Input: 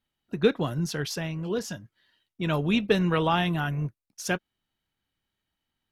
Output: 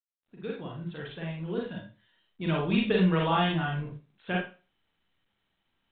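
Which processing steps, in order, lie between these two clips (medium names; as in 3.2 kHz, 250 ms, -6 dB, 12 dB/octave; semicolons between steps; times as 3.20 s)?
fade-in on the opening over 1.83 s; Schroeder reverb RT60 0.32 s, combs from 33 ms, DRR -2.5 dB; trim -6 dB; µ-law 64 kbps 8 kHz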